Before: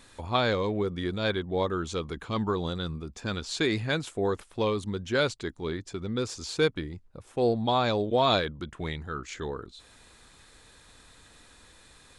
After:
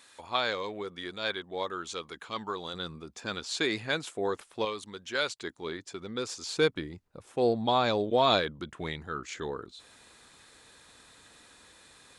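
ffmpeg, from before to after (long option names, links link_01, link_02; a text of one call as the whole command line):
ffmpeg -i in.wav -af "asetnsamples=nb_out_samples=441:pad=0,asendcmd='2.74 highpass f 430;4.65 highpass f 1100;5.41 highpass f 490;6.57 highpass f 190',highpass=frequency=990:poles=1" out.wav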